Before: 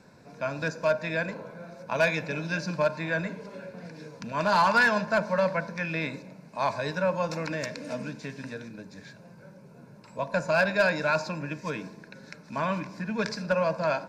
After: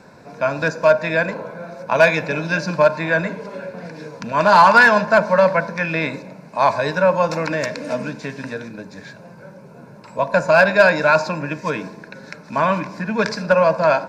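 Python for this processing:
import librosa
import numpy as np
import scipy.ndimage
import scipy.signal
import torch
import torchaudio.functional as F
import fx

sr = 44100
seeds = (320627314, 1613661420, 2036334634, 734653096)

y = fx.peak_eq(x, sr, hz=870.0, db=5.5, octaves=2.7)
y = y * 10.0 ** (6.5 / 20.0)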